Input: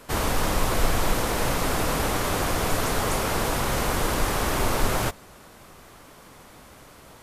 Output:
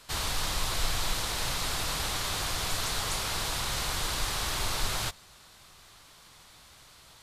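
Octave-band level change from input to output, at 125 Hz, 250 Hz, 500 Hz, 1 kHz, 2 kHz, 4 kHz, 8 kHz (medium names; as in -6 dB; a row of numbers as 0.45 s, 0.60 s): -9.0 dB, -14.5 dB, -14.0 dB, -8.5 dB, -5.5 dB, +1.5 dB, -2.0 dB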